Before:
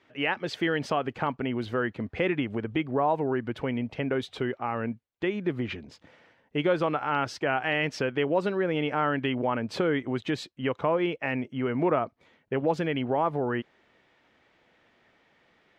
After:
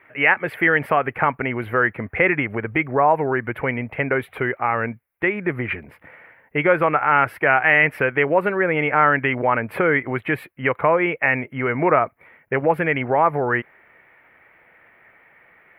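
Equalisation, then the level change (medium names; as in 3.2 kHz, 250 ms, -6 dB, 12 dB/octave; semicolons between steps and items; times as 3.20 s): FFT filter 150 Hz 0 dB, 240 Hz -5 dB, 460 Hz +1 dB, 1 kHz +4 dB, 2.2 kHz +10 dB, 3.7 kHz -18 dB, 6.5 kHz -28 dB, 11 kHz +10 dB; +6.0 dB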